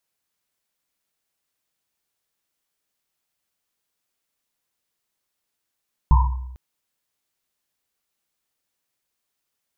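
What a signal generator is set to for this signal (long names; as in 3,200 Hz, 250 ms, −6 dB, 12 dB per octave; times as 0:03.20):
drum after Risset length 0.45 s, pitch 63 Hz, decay 1.02 s, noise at 970 Hz, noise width 140 Hz, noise 25%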